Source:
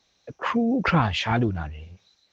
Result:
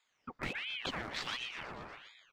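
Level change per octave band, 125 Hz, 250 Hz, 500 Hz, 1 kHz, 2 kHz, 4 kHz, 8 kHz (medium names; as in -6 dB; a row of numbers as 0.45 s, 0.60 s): -25.5 dB, -24.5 dB, -18.0 dB, -18.0 dB, -10.0 dB, -6.5 dB, no reading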